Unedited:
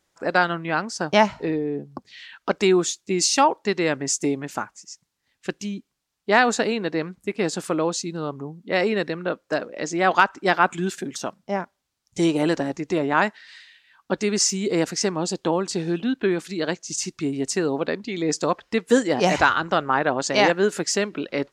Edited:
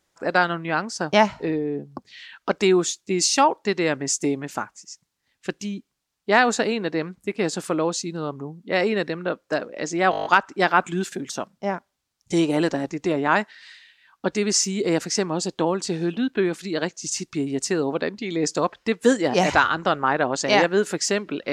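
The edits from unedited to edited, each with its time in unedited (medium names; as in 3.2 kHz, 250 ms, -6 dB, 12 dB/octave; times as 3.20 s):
10.11 s: stutter 0.02 s, 8 plays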